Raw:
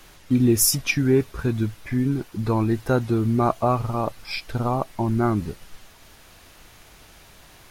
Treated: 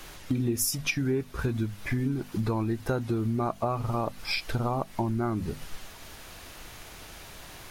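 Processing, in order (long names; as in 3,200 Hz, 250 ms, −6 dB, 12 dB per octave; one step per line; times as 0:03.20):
mains-hum notches 50/100/150/200/250 Hz
downward compressor 5 to 1, threshold −30 dBFS, peak gain reduction 15.5 dB
level +4 dB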